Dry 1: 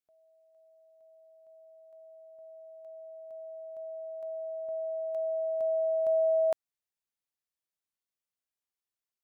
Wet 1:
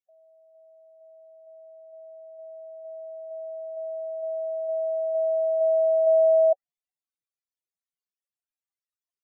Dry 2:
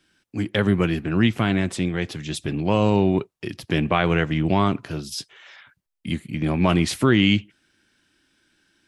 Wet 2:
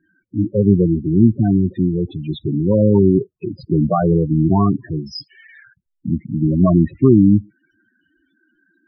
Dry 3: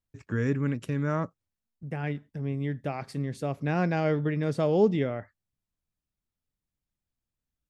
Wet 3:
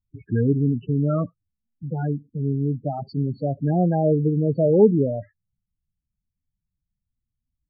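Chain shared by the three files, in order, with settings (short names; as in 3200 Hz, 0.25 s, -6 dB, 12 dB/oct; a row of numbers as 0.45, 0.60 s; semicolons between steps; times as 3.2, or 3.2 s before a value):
treble ducked by the level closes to 1500 Hz, closed at -20 dBFS; loudest bins only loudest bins 8; gain +7.5 dB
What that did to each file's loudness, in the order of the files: +7.5, +5.5, +7.0 LU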